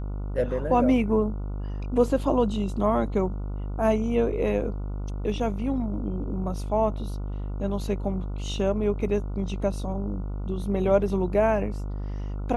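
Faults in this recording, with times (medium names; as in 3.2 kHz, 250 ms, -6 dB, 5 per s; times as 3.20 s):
buzz 50 Hz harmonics 29 -31 dBFS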